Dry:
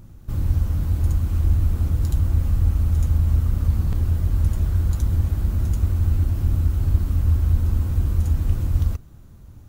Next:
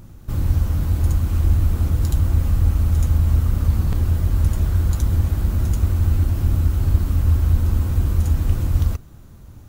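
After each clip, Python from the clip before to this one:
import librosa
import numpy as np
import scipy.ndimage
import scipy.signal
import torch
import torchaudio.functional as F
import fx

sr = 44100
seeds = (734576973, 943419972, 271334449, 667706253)

y = fx.low_shelf(x, sr, hz=240.0, db=-4.0)
y = y * 10.0 ** (5.5 / 20.0)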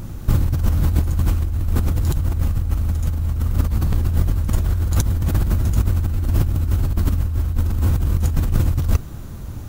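y = fx.over_compress(x, sr, threshold_db=-23.0, ratio=-1.0)
y = y * 10.0 ** (5.0 / 20.0)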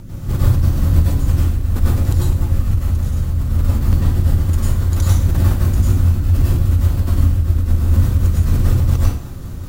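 y = np.clip(10.0 ** (8.0 / 20.0) * x, -1.0, 1.0) / 10.0 ** (8.0 / 20.0)
y = fx.rotary(y, sr, hz=5.0)
y = fx.rev_plate(y, sr, seeds[0], rt60_s=0.52, hf_ratio=0.95, predelay_ms=85, drr_db=-6.0)
y = y * 10.0 ** (-1.5 / 20.0)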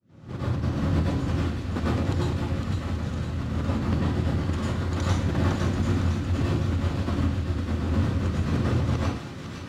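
y = fx.fade_in_head(x, sr, length_s=0.82)
y = fx.bandpass_edges(y, sr, low_hz=170.0, high_hz=3800.0)
y = fx.echo_wet_highpass(y, sr, ms=507, feedback_pct=60, hz=1900.0, wet_db=-5)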